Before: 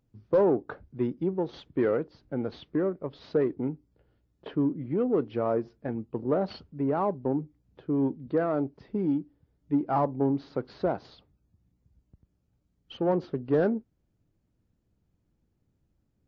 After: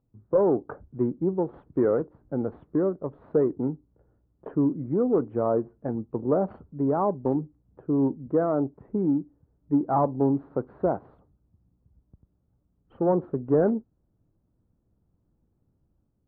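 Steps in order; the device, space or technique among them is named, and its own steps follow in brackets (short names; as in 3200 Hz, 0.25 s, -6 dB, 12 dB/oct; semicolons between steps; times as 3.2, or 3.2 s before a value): action camera in a waterproof case (LPF 1300 Hz 24 dB/oct; AGC gain up to 4 dB; gain -1 dB; AAC 48 kbps 44100 Hz)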